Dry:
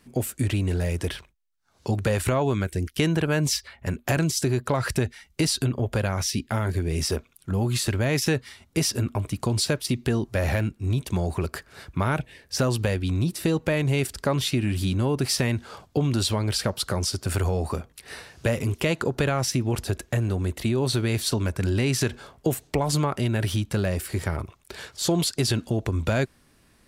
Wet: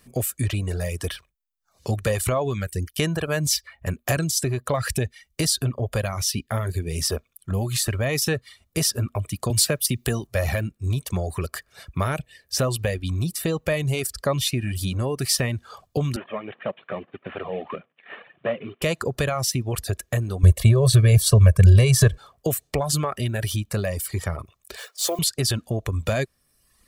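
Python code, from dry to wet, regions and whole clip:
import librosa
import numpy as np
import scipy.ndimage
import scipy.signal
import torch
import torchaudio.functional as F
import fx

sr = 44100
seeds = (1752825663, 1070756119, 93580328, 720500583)

y = fx.chain(x, sr, fx.high_shelf(hz=8800.0, db=10.0),
    fx.band_squash(depth_pct=40), at=(9.5, 10.27))
y = fx.chain(y, sr, fx.cvsd(bps=16000),
    fx.highpass(hz=180.0, slope=24), at=(16.16, 18.82))
y = fx.chain(y, sr, fx.low_shelf(hz=280.0, db=11.5),
    fx.comb(ms=1.8, depth=0.82), at=(20.43, 22.18))
y = fx.chain(y, sr, fx.block_float(bits=5),
    fx.highpass(hz=380.0, slope=24), at=(24.77, 25.19))
y = fx.dereverb_blind(y, sr, rt60_s=0.88)
y = fx.high_shelf(y, sr, hz=8200.0, db=9.0)
y = y + 0.37 * np.pad(y, (int(1.7 * sr / 1000.0), 0))[:len(y)]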